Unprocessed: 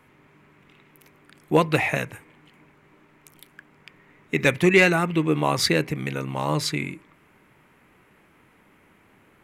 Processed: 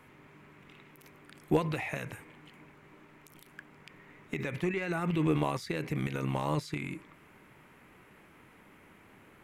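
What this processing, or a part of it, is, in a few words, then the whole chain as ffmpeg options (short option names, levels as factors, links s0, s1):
de-esser from a sidechain: -filter_complex "[0:a]asplit=2[s0][s1];[s1]highpass=5000,apad=whole_len=415963[s2];[s0][s2]sidechaincompress=threshold=0.00178:ratio=3:attack=4.3:release=33,asettb=1/sr,asplit=3[s3][s4][s5];[s3]atrim=end=4.404[s6];[s4]atrim=start=4.4:end=5.1,asetpts=PTS-STARTPTS,afade=t=in:d=0.004:c=qsin,afade=t=out:st=0.696:d=0.004:c=qsin,acrossover=split=2700[s7][s8];[s8]acompressor=threshold=0.00398:ratio=4:attack=1:release=60[s9];[s7][s9]amix=inputs=2:normalize=0[s10];[s5]atrim=start=5.096[s11];[s6][s10]acrossfade=d=0.004:c1=hsin:c2=qsin[s12];[s12][s11]acrossfade=d=0.004:c1=qsin:c2=hsin"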